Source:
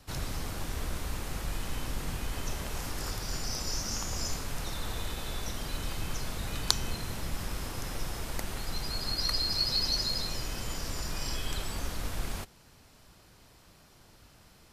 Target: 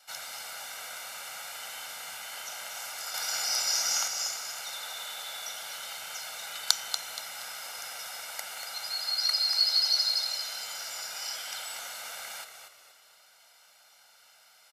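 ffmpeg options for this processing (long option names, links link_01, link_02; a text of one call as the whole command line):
ffmpeg -i in.wav -filter_complex "[0:a]highpass=1000,aecho=1:1:1.4:0.8,asettb=1/sr,asplit=3[link_01][link_02][link_03];[link_01]atrim=end=3.144[link_04];[link_02]atrim=start=3.14:end=4.08,asetpts=PTS-STARTPTS,afade=type=in:duration=0.004:curve=qsin,afade=type=out:start_time=0.936:duration=0.004:curve=qsin,acontrast=45[link_05];[link_03]atrim=start=4.076[link_06];[link_04][link_05]acrossfade=duration=0.004:curve1=hsin:curve2=qsin[link_07];[link_07][link_06]acrossfade=duration=0.004:curve1=qsin:curve2=hsin,asplit=5[link_08][link_09][link_10][link_11][link_12];[link_09]adelay=237,afreqshift=-52,volume=-8dB[link_13];[link_10]adelay=474,afreqshift=-104,volume=-17.1dB[link_14];[link_11]adelay=711,afreqshift=-156,volume=-26.2dB[link_15];[link_12]adelay=948,afreqshift=-208,volume=-35.4dB[link_16];[link_08][link_13][link_14][link_15][link_16]amix=inputs=5:normalize=0" out.wav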